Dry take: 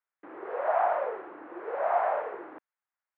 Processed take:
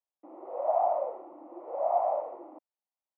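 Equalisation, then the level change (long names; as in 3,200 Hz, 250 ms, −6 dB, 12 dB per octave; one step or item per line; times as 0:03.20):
resonant band-pass 470 Hz, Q 1.4
phaser with its sweep stopped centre 430 Hz, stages 6
+4.0 dB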